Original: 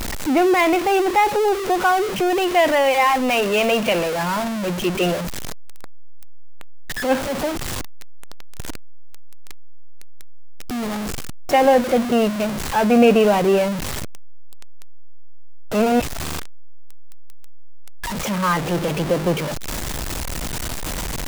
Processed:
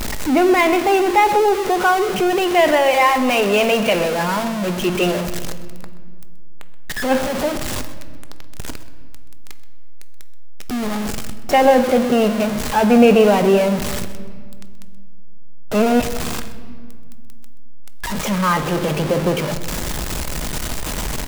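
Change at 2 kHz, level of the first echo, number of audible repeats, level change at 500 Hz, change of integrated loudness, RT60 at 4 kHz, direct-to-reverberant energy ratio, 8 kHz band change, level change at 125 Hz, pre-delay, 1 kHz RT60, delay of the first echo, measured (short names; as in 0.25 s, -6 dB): +2.0 dB, -17.0 dB, 1, +2.5 dB, +2.0 dB, 1.3 s, 8.5 dB, +2.0 dB, +2.5 dB, 5 ms, 1.7 s, 0.128 s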